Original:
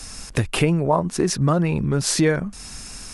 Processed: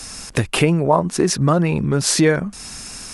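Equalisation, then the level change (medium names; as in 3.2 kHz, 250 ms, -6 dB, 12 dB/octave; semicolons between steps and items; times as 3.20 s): bass shelf 73 Hz -10 dB; +4.0 dB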